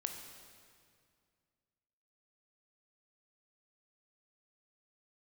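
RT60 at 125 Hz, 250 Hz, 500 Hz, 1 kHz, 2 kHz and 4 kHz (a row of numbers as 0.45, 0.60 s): 2.7, 2.5, 2.2, 2.1, 2.0, 1.9 s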